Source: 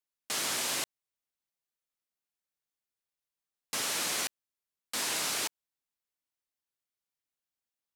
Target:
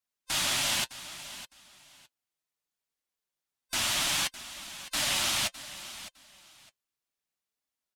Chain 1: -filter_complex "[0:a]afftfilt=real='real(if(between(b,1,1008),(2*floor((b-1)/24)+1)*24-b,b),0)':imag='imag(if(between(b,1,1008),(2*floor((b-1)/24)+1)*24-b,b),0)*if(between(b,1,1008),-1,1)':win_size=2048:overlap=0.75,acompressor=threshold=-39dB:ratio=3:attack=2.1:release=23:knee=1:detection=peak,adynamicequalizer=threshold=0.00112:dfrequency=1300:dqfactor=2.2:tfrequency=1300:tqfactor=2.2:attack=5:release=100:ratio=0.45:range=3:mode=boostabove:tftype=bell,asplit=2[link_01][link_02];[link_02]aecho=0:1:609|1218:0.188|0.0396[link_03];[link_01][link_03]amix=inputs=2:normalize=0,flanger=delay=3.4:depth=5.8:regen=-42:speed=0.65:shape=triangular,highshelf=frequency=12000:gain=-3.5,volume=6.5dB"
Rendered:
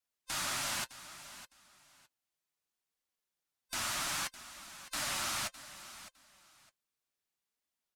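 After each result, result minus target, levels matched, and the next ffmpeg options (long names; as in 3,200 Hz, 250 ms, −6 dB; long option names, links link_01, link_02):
downward compressor: peak gain reduction +7.5 dB; 1,000 Hz band +4.5 dB
-filter_complex "[0:a]afftfilt=real='real(if(between(b,1,1008),(2*floor((b-1)/24)+1)*24-b,b),0)':imag='imag(if(between(b,1,1008),(2*floor((b-1)/24)+1)*24-b,b),0)*if(between(b,1,1008),-1,1)':win_size=2048:overlap=0.75,adynamicequalizer=threshold=0.00112:dfrequency=1300:dqfactor=2.2:tfrequency=1300:tqfactor=2.2:attack=5:release=100:ratio=0.45:range=3:mode=boostabove:tftype=bell,asplit=2[link_01][link_02];[link_02]aecho=0:1:609|1218:0.188|0.0396[link_03];[link_01][link_03]amix=inputs=2:normalize=0,flanger=delay=3.4:depth=5.8:regen=-42:speed=0.65:shape=triangular,highshelf=frequency=12000:gain=-3.5,volume=6.5dB"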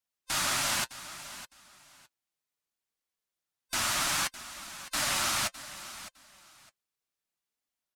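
1,000 Hz band +4.5 dB
-filter_complex "[0:a]afftfilt=real='real(if(between(b,1,1008),(2*floor((b-1)/24)+1)*24-b,b),0)':imag='imag(if(between(b,1,1008),(2*floor((b-1)/24)+1)*24-b,b),0)*if(between(b,1,1008),-1,1)':win_size=2048:overlap=0.75,adynamicequalizer=threshold=0.00112:dfrequency=3200:dqfactor=2.2:tfrequency=3200:tqfactor=2.2:attack=5:release=100:ratio=0.45:range=3:mode=boostabove:tftype=bell,asplit=2[link_01][link_02];[link_02]aecho=0:1:609|1218:0.188|0.0396[link_03];[link_01][link_03]amix=inputs=2:normalize=0,flanger=delay=3.4:depth=5.8:regen=-42:speed=0.65:shape=triangular,highshelf=frequency=12000:gain=-3.5,volume=6.5dB"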